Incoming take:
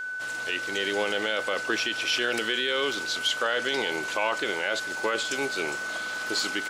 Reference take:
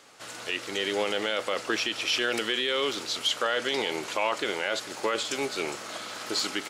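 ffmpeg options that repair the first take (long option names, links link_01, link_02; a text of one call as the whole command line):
ffmpeg -i in.wav -af "bandreject=frequency=1500:width=30" out.wav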